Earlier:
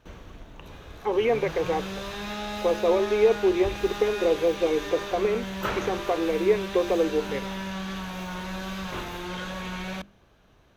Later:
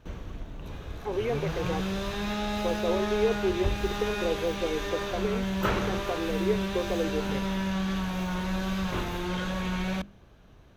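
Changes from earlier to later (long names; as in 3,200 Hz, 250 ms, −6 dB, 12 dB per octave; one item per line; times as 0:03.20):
speech −9.0 dB
master: add low-shelf EQ 320 Hz +7 dB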